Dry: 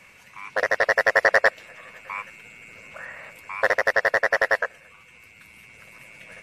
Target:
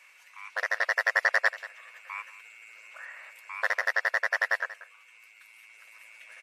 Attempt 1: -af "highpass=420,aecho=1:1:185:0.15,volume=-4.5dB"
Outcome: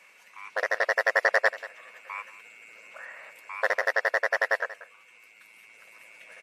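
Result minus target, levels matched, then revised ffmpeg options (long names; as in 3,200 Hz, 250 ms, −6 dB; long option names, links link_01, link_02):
500 Hz band +7.5 dB
-af "highpass=1000,aecho=1:1:185:0.15,volume=-4.5dB"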